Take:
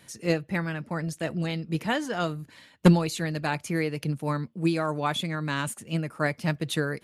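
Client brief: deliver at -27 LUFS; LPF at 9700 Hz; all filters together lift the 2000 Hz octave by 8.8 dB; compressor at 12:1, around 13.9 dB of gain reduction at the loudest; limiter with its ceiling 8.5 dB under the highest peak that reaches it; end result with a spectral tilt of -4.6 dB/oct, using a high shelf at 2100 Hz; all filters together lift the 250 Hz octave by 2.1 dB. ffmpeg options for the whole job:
-af "lowpass=9.7k,equalizer=f=250:t=o:g=3.5,equalizer=f=2k:t=o:g=8.5,highshelf=f=2.1k:g=4.5,acompressor=threshold=-23dB:ratio=12,volume=4dB,alimiter=limit=-15.5dB:level=0:latency=1"

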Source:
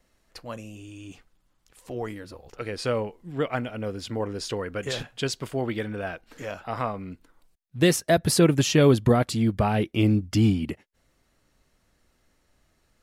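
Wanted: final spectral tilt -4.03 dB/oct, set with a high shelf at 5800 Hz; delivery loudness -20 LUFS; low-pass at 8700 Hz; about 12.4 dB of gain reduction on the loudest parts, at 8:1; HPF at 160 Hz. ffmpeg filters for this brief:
-af "highpass=160,lowpass=8.7k,highshelf=f=5.8k:g=8.5,acompressor=threshold=-27dB:ratio=8,volume=13.5dB"

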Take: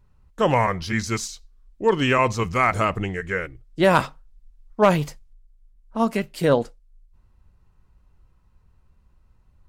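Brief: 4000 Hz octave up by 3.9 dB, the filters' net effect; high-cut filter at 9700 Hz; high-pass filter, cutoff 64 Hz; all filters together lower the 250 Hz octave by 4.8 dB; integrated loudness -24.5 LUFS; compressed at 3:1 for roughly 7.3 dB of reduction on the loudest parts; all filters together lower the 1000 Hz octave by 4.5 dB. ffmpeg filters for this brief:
-af "highpass=64,lowpass=9.7k,equalizer=f=250:t=o:g=-6.5,equalizer=f=1k:t=o:g=-5.5,equalizer=f=4k:t=o:g=6,acompressor=threshold=-25dB:ratio=3,volume=5dB"

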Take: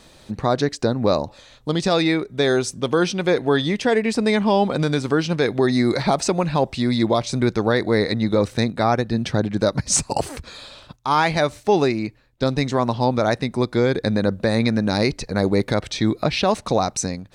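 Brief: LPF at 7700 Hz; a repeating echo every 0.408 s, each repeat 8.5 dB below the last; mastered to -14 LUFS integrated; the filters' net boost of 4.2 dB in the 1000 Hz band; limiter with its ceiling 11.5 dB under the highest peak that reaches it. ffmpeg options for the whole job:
-af "lowpass=7.7k,equalizer=f=1k:t=o:g=5.5,alimiter=limit=-14.5dB:level=0:latency=1,aecho=1:1:408|816|1224|1632:0.376|0.143|0.0543|0.0206,volume=11dB"

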